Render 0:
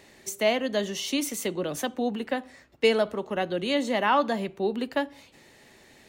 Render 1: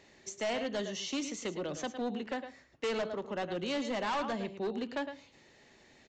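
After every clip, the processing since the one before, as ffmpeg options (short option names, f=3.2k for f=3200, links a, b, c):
-af "aecho=1:1:109:0.282,aresample=16000,asoftclip=type=hard:threshold=-23.5dB,aresample=44100,volume=-6.5dB"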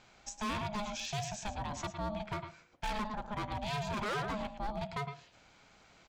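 -af "asoftclip=type=hard:threshold=-32dB,aeval=exprs='val(0)*sin(2*PI*420*n/s)':c=same,volume=2dB"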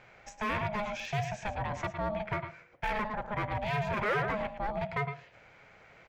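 -af "equalizer=f=125:t=o:w=1:g=7,equalizer=f=250:t=o:w=1:g=-4,equalizer=f=500:t=o:w=1:g=9,equalizer=f=2k:t=o:w=1:g=11,equalizer=f=4k:t=o:w=1:g=-6,equalizer=f=8k:t=o:w=1:g=-9"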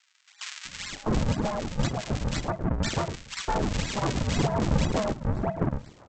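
-filter_complex "[0:a]aresample=16000,acrusher=samples=26:mix=1:aa=0.000001:lfo=1:lforange=41.6:lforate=2,aresample=44100,acrossover=split=1600[a][b];[a]adelay=650[c];[c][b]amix=inputs=2:normalize=0,volume=7dB"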